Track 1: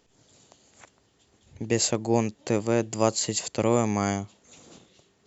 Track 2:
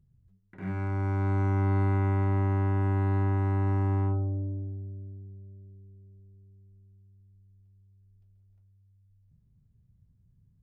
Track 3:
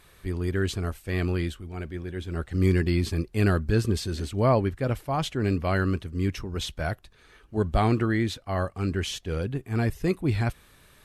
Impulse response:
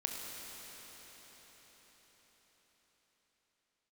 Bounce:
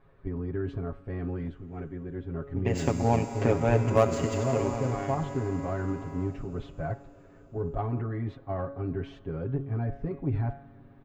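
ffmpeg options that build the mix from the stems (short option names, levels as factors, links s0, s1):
-filter_complex "[0:a]equalizer=f=4200:t=o:w=0.26:g=-14,adynamicsmooth=sensitivity=2:basefreq=4300,adelay=950,afade=t=in:st=2.43:d=0.56:silence=0.281838,afade=t=out:st=4.14:d=0.55:silence=0.251189,asplit=2[s0][s1];[s1]volume=0.355[s2];[1:a]aemphasis=mode=production:type=riaa,adelay=2150,volume=0.282,asplit=2[s3][s4];[s4]volume=0.251[s5];[2:a]lowpass=1000,bandreject=f=139.3:t=h:w=4,bandreject=f=278.6:t=h:w=4,bandreject=f=417.9:t=h:w=4,bandreject=f=557.2:t=h:w=4,bandreject=f=696.5:t=h:w=4,bandreject=f=835.8:t=h:w=4,bandreject=f=975.1:t=h:w=4,bandreject=f=1114.4:t=h:w=4,bandreject=f=1253.7:t=h:w=4,bandreject=f=1393:t=h:w=4,bandreject=f=1532.3:t=h:w=4,bandreject=f=1671.6:t=h:w=4,bandreject=f=1810.9:t=h:w=4,bandreject=f=1950.2:t=h:w=4,bandreject=f=2089.5:t=h:w=4,bandreject=f=2228.8:t=h:w=4,bandreject=f=2368.1:t=h:w=4,bandreject=f=2507.4:t=h:w=4,bandreject=f=2646.7:t=h:w=4,bandreject=f=2786:t=h:w=4,bandreject=f=2925.3:t=h:w=4,bandreject=f=3064.6:t=h:w=4,bandreject=f=3203.9:t=h:w=4,bandreject=f=3343.2:t=h:w=4,bandreject=f=3482.5:t=h:w=4,bandreject=f=3621.8:t=h:w=4,bandreject=f=3761.1:t=h:w=4,bandreject=f=3900.4:t=h:w=4,bandreject=f=4039.7:t=h:w=4,bandreject=f=4179:t=h:w=4,bandreject=f=4318.3:t=h:w=4,bandreject=f=4457.6:t=h:w=4,bandreject=f=4596.9:t=h:w=4,bandreject=f=4736.2:t=h:w=4,bandreject=f=4875.5:t=h:w=4,alimiter=limit=0.075:level=0:latency=1:release=30,volume=0.794,asplit=2[s6][s7];[s7]volume=0.112[s8];[s0][s3]amix=inputs=2:normalize=0,lowpass=3600,acompressor=threshold=0.02:ratio=1.5,volume=1[s9];[3:a]atrim=start_sample=2205[s10];[s2][s5][s8]amix=inputs=3:normalize=0[s11];[s11][s10]afir=irnorm=-1:irlink=0[s12];[s6][s9][s12]amix=inputs=3:normalize=0,aecho=1:1:7.3:0.97,aeval=exprs='0.316*(cos(1*acos(clip(val(0)/0.316,-1,1)))-cos(1*PI/2))+0.01*(cos(7*acos(clip(val(0)/0.316,-1,1)))-cos(7*PI/2))':c=same"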